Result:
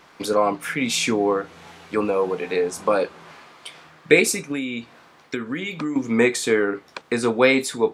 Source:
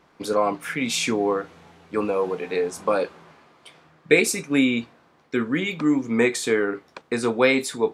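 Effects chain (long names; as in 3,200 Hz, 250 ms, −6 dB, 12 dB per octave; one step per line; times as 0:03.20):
0:04.36–0:05.96: downward compressor 6 to 1, threshold −27 dBFS, peak gain reduction 12 dB
one half of a high-frequency compander encoder only
level +2 dB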